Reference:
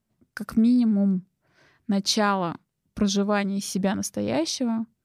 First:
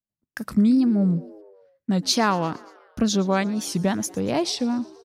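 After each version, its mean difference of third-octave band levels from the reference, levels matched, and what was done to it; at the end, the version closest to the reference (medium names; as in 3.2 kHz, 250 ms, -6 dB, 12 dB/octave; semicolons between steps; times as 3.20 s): 3.5 dB: gate -54 dBFS, range -23 dB; wow and flutter 140 cents; on a send: frequency-shifting echo 116 ms, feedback 61%, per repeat +75 Hz, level -22 dB; on the sum: trim +1.5 dB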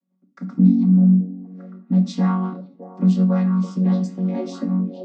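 10.0 dB: vocoder on a held chord major triad, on F#3; on a send: repeats whose band climbs or falls 614 ms, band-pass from 490 Hz, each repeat 1.4 oct, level -5.5 dB; on the sum: simulated room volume 400 m³, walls furnished, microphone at 1.1 m; trim +1.5 dB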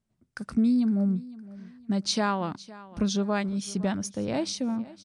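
2.0 dB: resampled via 22.05 kHz; bass shelf 150 Hz +4 dB; feedback delay 511 ms, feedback 34%, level -19 dB; trim -4.5 dB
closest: third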